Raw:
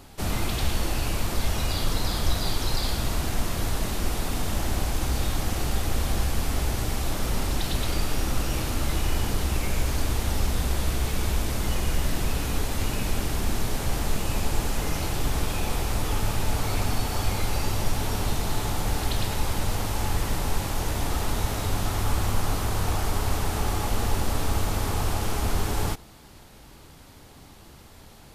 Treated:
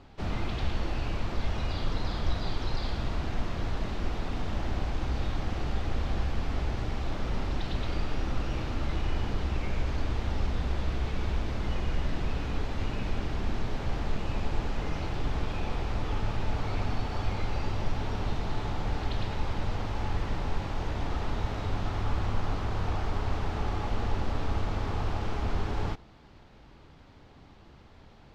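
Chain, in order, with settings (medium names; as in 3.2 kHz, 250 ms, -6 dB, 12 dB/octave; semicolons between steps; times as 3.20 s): distance through air 200 m; 4.56–5.36 s: short-mantissa float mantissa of 8-bit; trim -4 dB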